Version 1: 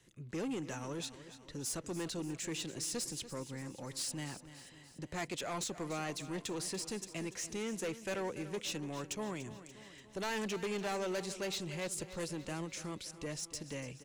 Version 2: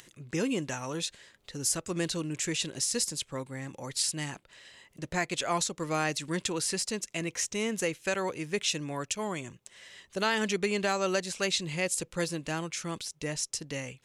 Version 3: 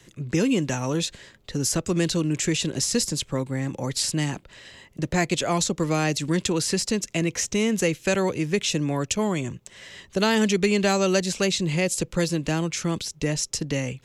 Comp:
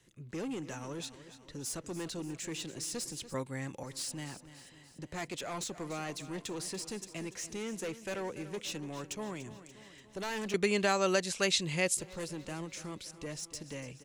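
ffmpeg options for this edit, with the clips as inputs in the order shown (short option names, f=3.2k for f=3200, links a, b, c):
-filter_complex "[1:a]asplit=2[a][b];[0:a]asplit=3[c][d][e];[c]atrim=end=3.342[f];[a]atrim=start=3.338:end=3.832[g];[d]atrim=start=3.828:end=10.542[h];[b]atrim=start=10.538:end=11.972[i];[e]atrim=start=11.968[j];[f][g]acrossfade=d=0.004:c1=hsin:c2=hsin[k];[k][h]acrossfade=d=0.004:c1=hsin:c2=hsin[l];[l][i]acrossfade=d=0.004:c1=hsin:c2=hsin[m];[m][j]acrossfade=d=0.004:c1=hsin:c2=hsin"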